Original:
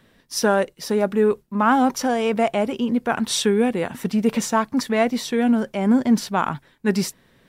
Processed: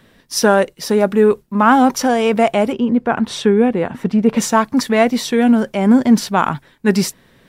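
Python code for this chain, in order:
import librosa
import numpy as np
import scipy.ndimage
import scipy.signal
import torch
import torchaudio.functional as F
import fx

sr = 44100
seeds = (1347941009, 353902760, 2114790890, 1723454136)

y = fx.lowpass(x, sr, hz=1500.0, slope=6, at=(2.72, 4.36), fade=0.02)
y = F.gain(torch.from_numpy(y), 6.0).numpy()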